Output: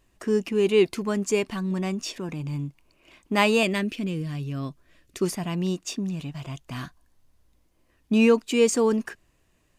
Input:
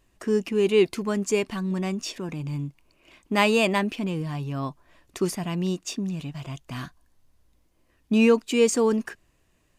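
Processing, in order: 3.63–5.22 s: peaking EQ 880 Hz -13.5 dB 0.78 oct

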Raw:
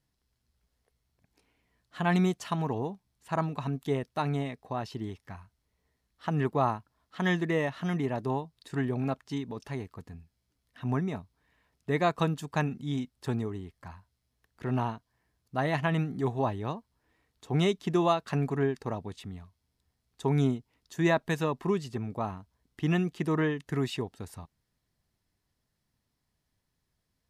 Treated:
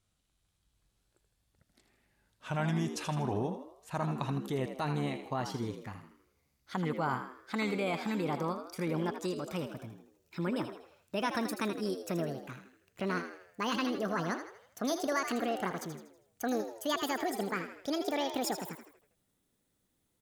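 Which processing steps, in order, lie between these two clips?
gliding tape speed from 72% -> 198%; treble shelf 5.9 kHz +6.5 dB; in parallel at +1 dB: compressor with a negative ratio -32 dBFS, ratio -1; on the sum: frequency-shifting echo 80 ms, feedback 45%, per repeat +66 Hz, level -9 dB; trim -9 dB

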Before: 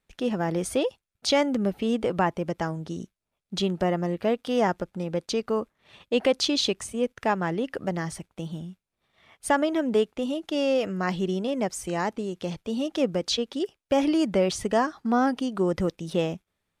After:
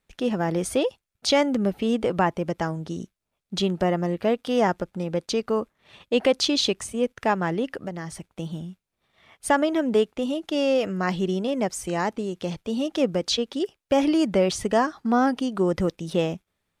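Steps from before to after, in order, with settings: 7.68–8.33 s: compression 2.5:1, threshold -34 dBFS, peak gain reduction 8 dB; trim +2 dB

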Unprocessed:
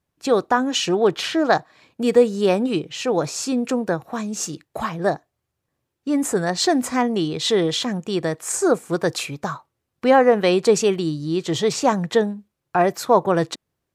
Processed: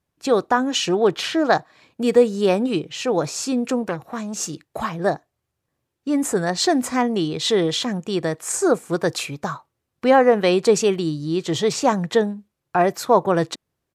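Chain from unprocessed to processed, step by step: resampled via 32 kHz; 3.83–4.34 s: transformer saturation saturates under 1 kHz

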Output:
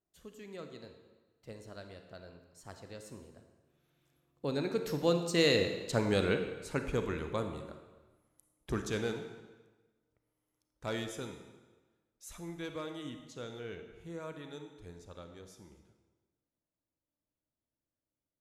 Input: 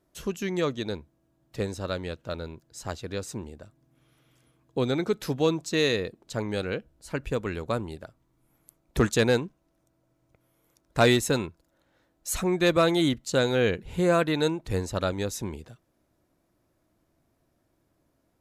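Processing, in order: Doppler pass-by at 6.06 s, 24 m/s, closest 15 m; on a send: reverberation RT60 1.2 s, pre-delay 31 ms, DRR 6 dB

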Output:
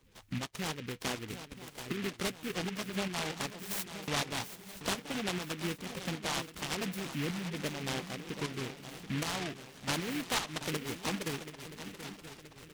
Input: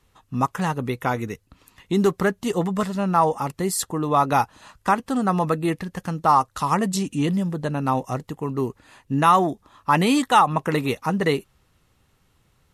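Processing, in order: coarse spectral quantiser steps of 30 dB; 3.50–4.08 s: steep high-pass 2.5 kHz; compression 2.5:1, threshold -42 dBFS, peak gain reduction 19.5 dB; tremolo saw up 2.6 Hz, depth 55%; shuffle delay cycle 976 ms, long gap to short 3:1, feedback 46%, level -11 dB; delay time shaken by noise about 2.1 kHz, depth 0.22 ms; trim +3 dB

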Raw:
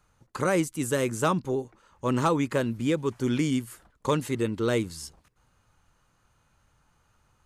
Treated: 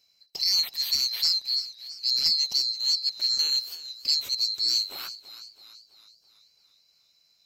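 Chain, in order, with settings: split-band scrambler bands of 4 kHz; spectral selection erased 5.66–6.33 s, 750–4000 Hz; modulated delay 330 ms, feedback 52%, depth 58 cents, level -15 dB

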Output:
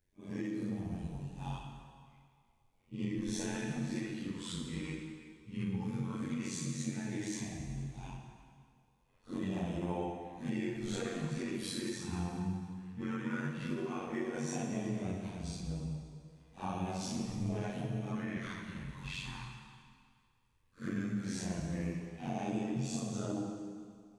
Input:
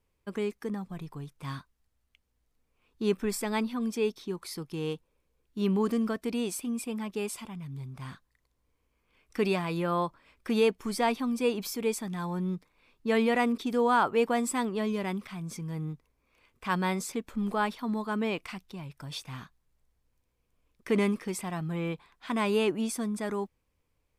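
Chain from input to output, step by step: phase randomisation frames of 200 ms; compression 6:1, threshold -31 dBFS, peak gain reduction 10.5 dB; AM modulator 92 Hz, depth 80%; LFO notch sine 0.14 Hz 600–2300 Hz; formant shift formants -5 st; on a send: reverberation RT60 2.0 s, pre-delay 55 ms, DRR 3.5 dB; on the sum: trim +1 dB

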